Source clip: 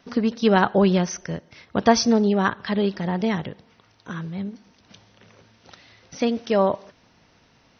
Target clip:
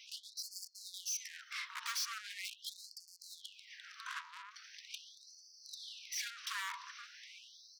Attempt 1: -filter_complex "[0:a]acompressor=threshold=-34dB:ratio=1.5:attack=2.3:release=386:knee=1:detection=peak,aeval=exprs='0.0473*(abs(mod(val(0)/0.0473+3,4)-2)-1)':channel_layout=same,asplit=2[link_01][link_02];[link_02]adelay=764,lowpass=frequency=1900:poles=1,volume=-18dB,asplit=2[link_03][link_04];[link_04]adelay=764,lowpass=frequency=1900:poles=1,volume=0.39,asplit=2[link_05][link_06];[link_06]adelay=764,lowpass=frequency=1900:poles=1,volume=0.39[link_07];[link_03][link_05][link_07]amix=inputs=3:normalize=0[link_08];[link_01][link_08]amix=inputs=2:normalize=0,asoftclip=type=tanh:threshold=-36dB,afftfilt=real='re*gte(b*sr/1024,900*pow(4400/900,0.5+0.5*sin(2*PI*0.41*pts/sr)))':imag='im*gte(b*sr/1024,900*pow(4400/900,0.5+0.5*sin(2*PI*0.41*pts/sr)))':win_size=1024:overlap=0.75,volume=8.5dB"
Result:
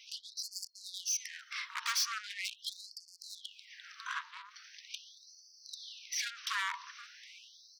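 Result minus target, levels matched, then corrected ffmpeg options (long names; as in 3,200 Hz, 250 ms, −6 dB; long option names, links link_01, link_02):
soft clipping: distortion −5 dB
-filter_complex "[0:a]acompressor=threshold=-34dB:ratio=1.5:attack=2.3:release=386:knee=1:detection=peak,aeval=exprs='0.0473*(abs(mod(val(0)/0.0473+3,4)-2)-1)':channel_layout=same,asplit=2[link_01][link_02];[link_02]adelay=764,lowpass=frequency=1900:poles=1,volume=-18dB,asplit=2[link_03][link_04];[link_04]adelay=764,lowpass=frequency=1900:poles=1,volume=0.39,asplit=2[link_05][link_06];[link_06]adelay=764,lowpass=frequency=1900:poles=1,volume=0.39[link_07];[link_03][link_05][link_07]amix=inputs=3:normalize=0[link_08];[link_01][link_08]amix=inputs=2:normalize=0,asoftclip=type=tanh:threshold=-43.5dB,afftfilt=real='re*gte(b*sr/1024,900*pow(4400/900,0.5+0.5*sin(2*PI*0.41*pts/sr)))':imag='im*gte(b*sr/1024,900*pow(4400/900,0.5+0.5*sin(2*PI*0.41*pts/sr)))':win_size=1024:overlap=0.75,volume=8.5dB"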